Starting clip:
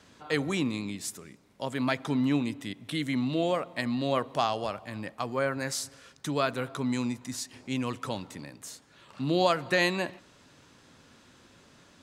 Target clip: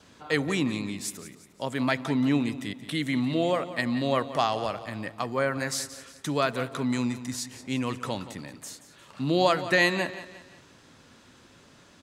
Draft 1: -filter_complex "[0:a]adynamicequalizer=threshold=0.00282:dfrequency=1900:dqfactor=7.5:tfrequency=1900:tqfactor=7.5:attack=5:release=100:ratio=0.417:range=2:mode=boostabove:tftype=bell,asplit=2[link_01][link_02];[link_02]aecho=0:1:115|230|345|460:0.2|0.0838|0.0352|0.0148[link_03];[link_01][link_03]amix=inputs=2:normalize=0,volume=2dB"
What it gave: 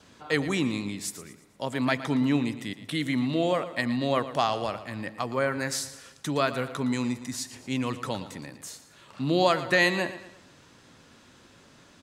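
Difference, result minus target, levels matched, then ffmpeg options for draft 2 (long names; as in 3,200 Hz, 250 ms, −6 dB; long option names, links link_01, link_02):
echo 62 ms early
-filter_complex "[0:a]adynamicequalizer=threshold=0.00282:dfrequency=1900:dqfactor=7.5:tfrequency=1900:tqfactor=7.5:attack=5:release=100:ratio=0.417:range=2:mode=boostabove:tftype=bell,asplit=2[link_01][link_02];[link_02]aecho=0:1:177|354|531|708:0.2|0.0838|0.0352|0.0148[link_03];[link_01][link_03]amix=inputs=2:normalize=0,volume=2dB"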